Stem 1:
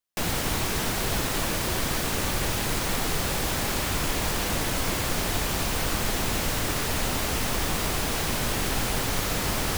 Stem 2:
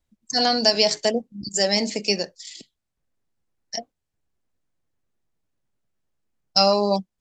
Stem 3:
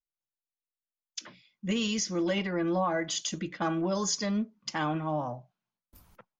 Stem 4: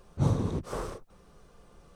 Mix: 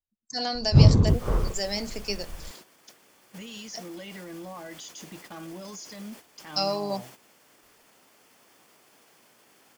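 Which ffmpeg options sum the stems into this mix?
-filter_complex "[0:a]highpass=270,bandreject=f=3900:w=9.6,alimiter=limit=0.075:level=0:latency=1:release=57,adelay=900,volume=0.158[s0];[1:a]volume=0.335[s1];[2:a]highshelf=f=2500:g=8,alimiter=limit=0.15:level=0:latency=1:release=237,adelay=1700,volume=0.398[s2];[3:a]lowpass=8800,aemphasis=mode=reproduction:type=bsi,adelay=550,volume=1.33[s3];[s0][s2]amix=inputs=2:normalize=0,adynamicequalizer=threshold=0.00282:dfrequency=1300:dqfactor=1.2:tfrequency=1300:tqfactor=1.2:attack=5:release=100:ratio=0.375:range=1.5:mode=cutabove:tftype=bell,alimiter=level_in=2.82:limit=0.0631:level=0:latency=1:release=23,volume=0.355,volume=1[s4];[s1][s3][s4]amix=inputs=3:normalize=0,agate=range=0.282:threshold=0.00562:ratio=16:detection=peak"

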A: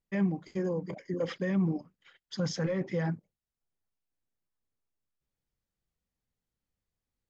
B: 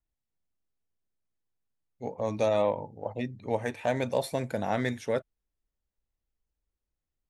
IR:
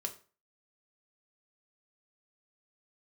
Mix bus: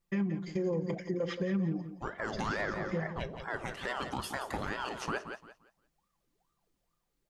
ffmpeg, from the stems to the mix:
-filter_complex "[0:a]aecho=1:1:5.8:0.86,acompressor=threshold=0.0316:ratio=6,volume=1.12,asplit=3[s0][s1][s2];[s1]volume=0.398[s3];[s2]volume=0.299[s4];[1:a]equalizer=f=4700:w=0.45:g=6,dynaudnorm=f=520:g=5:m=5.96,aeval=exprs='val(0)*sin(2*PI*750*n/s+750*0.65/2.3*sin(2*PI*2.3*n/s))':c=same,volume=0.188,asplit=4[s5][s6][s7][s8];[s6]volume=0.631[s9];[s7]volume=0.376[s10];[s8]apad=whole_len=322173[s11];[s0][s11]sidechaincompress=threshold=0.002:ratio=8:attack=16:release=107[s12];[2:a]atrim=start_sample=2205[s13];[s3][s9]amix=inputs=2:normalize=0[s14];[s14][s13]afir=irnorm=-1:irlink=0[s15];[s4][s10]amix=inputs=2:normalize=0,aecho=0:1:173|346|519|692:1|0.25|0.0625|0.0156[s16];[s12][s5][s15][s16]amix=inputs=4:normalize=0,alimiter=limit=0.0668:level=0:latency=1:release=174"

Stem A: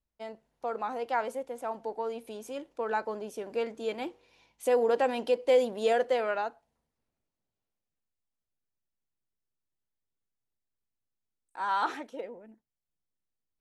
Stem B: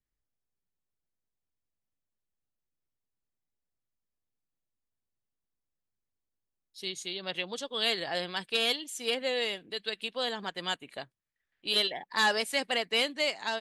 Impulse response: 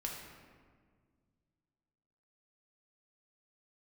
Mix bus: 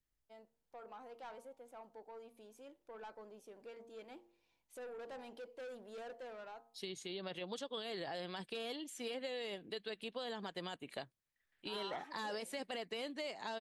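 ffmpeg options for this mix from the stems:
-filter_complex "[0:a]bandreject=f=115.4:t=h:w=4,bandreject=f=230.8:t=h:w=4,bandreject=f=346.2:t=h:w=4,bandreject=f=461.6:t=h:w=4,bandreject=f=577:t=h:w=4,bandreject=f=692.4:t=h:w=4,bandreject=f=807.8:t=h:w=4,bandreject=f=923.2:t=h:w=4,bandreject=f=1038.6:t=h:w=4,bandreject=f=1154:t=h:w=4,bandreject=f=1269.4:t=h:w=4,asoftclip=type=tanh:threshold=0.0376,adelay=100,volume=0.15[s0];[1:a]alimiter=level_in=1.12:limit=0.0631:level=0:latency=1:release=17,volume=0.891,acrossover=split=1000|2700[s1][s2][s3];[s1]acompressor=threshold=0.00794:ratio=4[s4];[s2]acompressor=threshold=0.002:ratio=4[s5];[s3]acompressor=threshold=0.00251:ratio=4[s6];[s4][s5][s6]amix=inputs=3:normalize=0,volume=1[s7];[s0][s7]amix=inputs=2:normalize=0"

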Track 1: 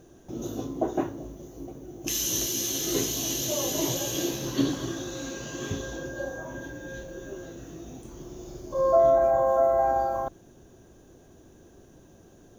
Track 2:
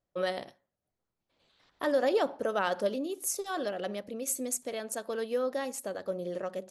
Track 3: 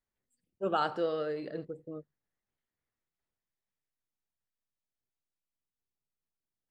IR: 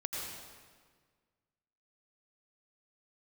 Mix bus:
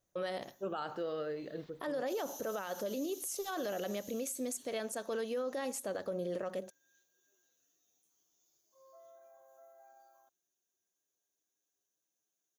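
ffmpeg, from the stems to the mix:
-filter_complex "[0:a]aderivative,asplit=2[s0][s1];[s1]adelay=8.3,afreqshift=0.29[s2];[s0][s2]amix=inputs=2:normalize=1,volume=0.141[s3];[1:a]alimiter=limit=0.0668:level=0:latency=1:release=329,volume=1.19[s4];[2:a]volume=0.631[s5];[s3][s4][s5]amix=inputs=3:normalize=0,alimiter=level_in=1.88:limit=0.0631:level=0:latency=1:release=48,volume=0.531"

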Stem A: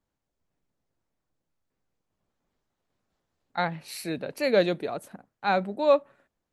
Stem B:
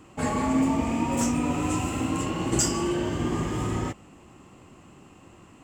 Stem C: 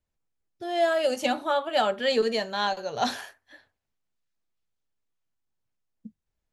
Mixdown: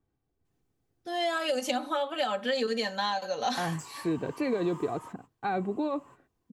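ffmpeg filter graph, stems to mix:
-filter_complex "[0:a]alimiter=limit=0.119:level=0:latency=1:release=33,highshelf=f=3700:g=-9.5,aecho=1:1:2.6:0.56,volume=0.75,asplit=2[s0][s1];[1:a]highshelf=f=8800:g=11,acompressor=threshold=0.0178:ratio=3,highpass=f=1000:t=q:w=8.9,adelay=1200,volume=0.224[s2];[2:a]highpass=f=950:p=1,aecho=1:1:3.9:0.66,acompressor=threshold=0.0631:ratio=6,adelay=450,volume=1.19[s3];[s1]apad=whole_len=301622[s4];[s2][s4]sidechaingate=range=0.0224:threshold=0.002:ratio=16:detection=peak[s5];[s0][s3]amix=inputs=2:normalize=0,equalizer=f=150:t=o:w=2.6:g=12.5,acompressor=threshold=0.0501:ratio=4,volume=1[s6];[s5][s6]amix=inputs=2:normalize=0"

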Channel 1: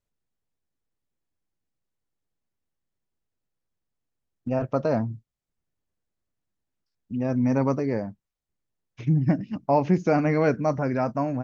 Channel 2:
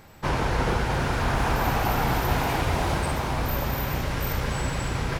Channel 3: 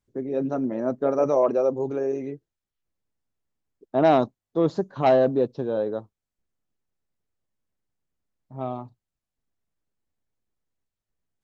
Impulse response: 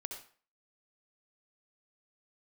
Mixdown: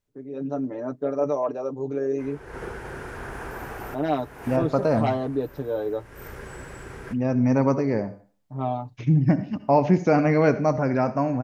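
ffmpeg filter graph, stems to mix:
-filter_complex "[0:a]volume=0.891,asplit=2[s0][s1];[s1]volume=0.668[s2];[1:a]equalizer=f=400:t=o:w=0.67:g=11,equalizer=f=1600:t=o:w=0.67:g=8,equalizer=f=4000:t=o:w=0.67:g=-6,equalizer=f=10000:t=o:w=0.67:g=7,adelay=1950,volume=0.158,asplit=2[s3][s4];[s4]volume=0.251[s5];[2:a]aecho=1:1:6.8:0.79,dynaudnorm=f=110:g=9:m=5.31,volume=0.266,asplit=2[s6][s7];[s7]apad=whole_len=315015[s8];[s3][s8]sidechaincompress=threshold=0.00708:ratio=8:attack=9.4:release=204[s9];[3:a]atrim=start_sample=2205[s10];[s2][s5]amix=inputs=2:normalize=0[s11];[s11][s10]afir=irnorm=-1:irlink=0[s12];[s0][s9][s6][s12]amix=inputs=4:normalize=0"

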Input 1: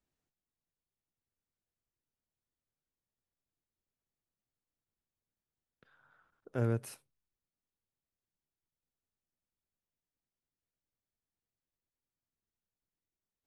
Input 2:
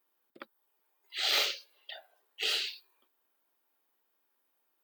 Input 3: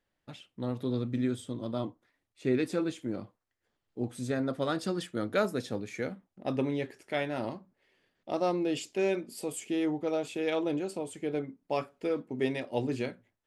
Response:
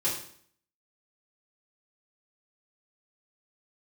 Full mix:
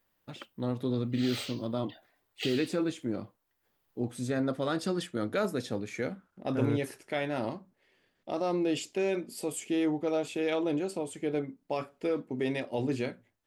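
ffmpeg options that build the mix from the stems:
-filter_complex "[0:a]volume=0.944[s0];[1:a]volume=0.944[s1];[2:a]alimiter=limit=0.0794:level=0:latency=1:release=28,volume=1.19,asplit=2[s2][s3];[s3]apad=whole_len=213360[s4];[s1][s4]sidechaincompress=threshold=0.0126:ratio=4:attack=34:release=846[s5];[s0][s5][s2]amix=inputs=3:normalize=0"

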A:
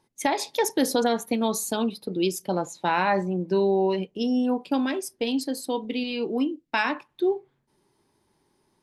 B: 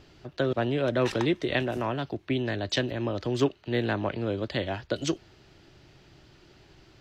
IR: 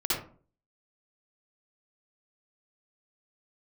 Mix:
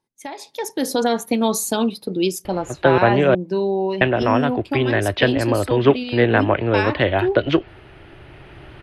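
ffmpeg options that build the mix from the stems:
-filter_complex "[0:a]volume=0.335[s0];[1:a]lowpass=f=2800:w=0.5412,lowpass=f=2800:w=1.3066,equalizer=f=200:t=o:w=1.2:g=-7,adelay=2450,volume=1.26,asplit=3[s1][s2][s3];[s1]atrim=end=3.35,asetpts=PTS-STARTPTS,afade=t=out:st=3.346:d=0.004:c=hsin[s4];[s2]atrim=start=3.35:end=4.01,asetpts=PTS-STARTPTS,volume=0[s5];[s3]atrim=start=4.01,asetpts=PTS-STARTPTS,afade=t=in:d=0.004:c=hsin[s6];[s4][s5][s6]concat=n=3:v=0:a=1[s7];[s0][s7]amix=inputs=2:normalize=0,dynaudnorm=f=350:g=5:m=6.31"

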